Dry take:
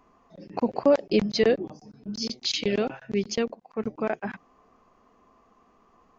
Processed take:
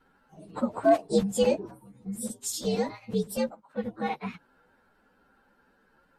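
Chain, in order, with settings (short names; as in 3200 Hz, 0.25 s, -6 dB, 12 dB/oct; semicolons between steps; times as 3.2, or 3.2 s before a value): inharmonic rescaling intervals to 120%; hard clip -11.5 dBFS, distortion -40 dB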